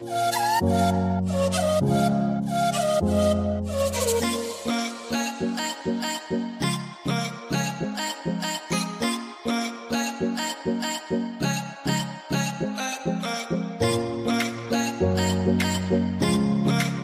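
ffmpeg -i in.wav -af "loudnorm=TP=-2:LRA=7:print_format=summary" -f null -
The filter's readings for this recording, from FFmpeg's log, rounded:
Input Integrated:    -25.0 LUFS
Input True Peak:      -9.9 dBTP
Input LRA:             4.3 LU
Input Threshold:     -35.0 LUFS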